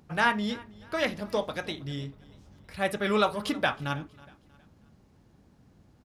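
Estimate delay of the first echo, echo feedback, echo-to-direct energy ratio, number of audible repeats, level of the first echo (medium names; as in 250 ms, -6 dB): 319 ms, 39%, -22.0 dB, 2, -22.5 dB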